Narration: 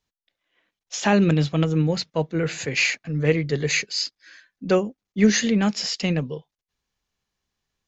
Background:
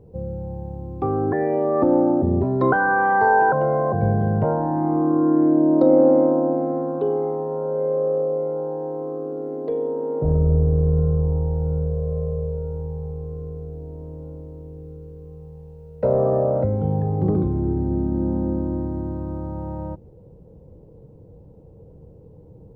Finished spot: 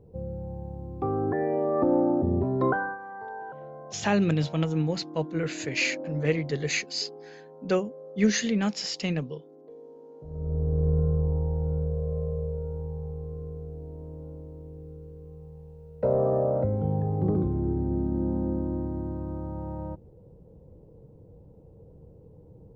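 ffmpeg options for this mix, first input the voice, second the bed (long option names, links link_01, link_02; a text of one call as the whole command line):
ffmpeg -i stem1.wav -i stem2.wav -filter_complex "[0:a]adelay=3000,volume=-5.5dB[link_01];[1:a]volume=12dB,afade=type=out:start_time=2.66:duration=0.32:silence=0.141254,afade=type=in:start_time=10.29:duration=0.6:silence=0.133352[link_02];[link_01][link_02]amix=inputs=2:normalize=0" out.wav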